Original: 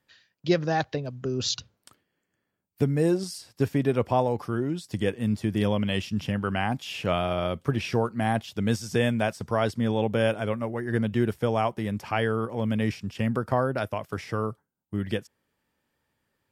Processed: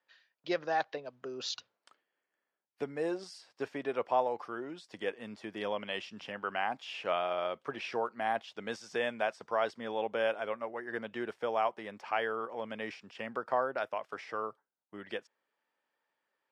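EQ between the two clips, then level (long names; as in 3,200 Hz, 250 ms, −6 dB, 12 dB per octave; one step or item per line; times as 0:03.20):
high-pass filter 640 Hz 12 dB per octave
head-to-tape spacing loss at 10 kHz 30 dB
high-shelf EQ 5,900 Hz +11.5 dB
0.0 dB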